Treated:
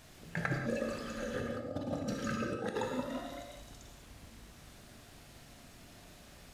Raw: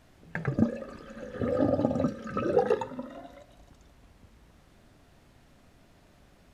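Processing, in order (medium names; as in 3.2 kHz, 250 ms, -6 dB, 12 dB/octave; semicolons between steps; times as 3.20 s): treble shelf 2.5 kHz +10.5 dB; compressor with a negative ratio -32 dBFS, ratio -0.5; gated-style reverb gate 220 ms flat, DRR 2.5 dB; trim -5 dB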